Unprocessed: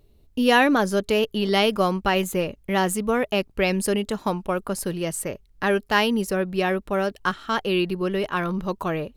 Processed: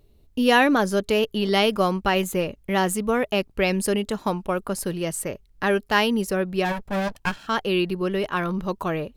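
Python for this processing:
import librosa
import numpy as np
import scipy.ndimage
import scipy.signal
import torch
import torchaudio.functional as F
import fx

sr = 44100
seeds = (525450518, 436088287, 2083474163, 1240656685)

y = fx.lower_of_two(x, sr, delay_ms=1.2, at=(6.64, 7.46), fade=0.02)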